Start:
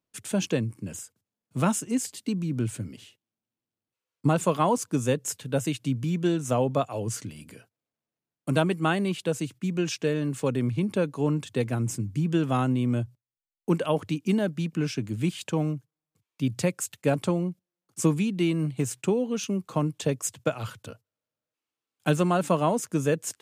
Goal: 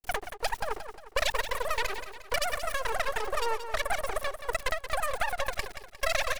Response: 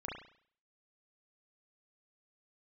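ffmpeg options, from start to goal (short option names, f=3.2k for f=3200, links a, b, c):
-filter_complex "[0:a]acrossover=split=130[a][b];[b]aeval=exprs='sgn(val(0))*max(abs(val(0))-0.00447,0)':c=same[c];[a][c]amix=inputs=2:normalize=0,highpass=81,aeval=exprs='max(val(0),0)':c=same,aecho=1:1:650|1300|1950|2600|3250:0.316|0.139|0.0612|0.0269|0.0119,asetrate=161406,aresample=44100"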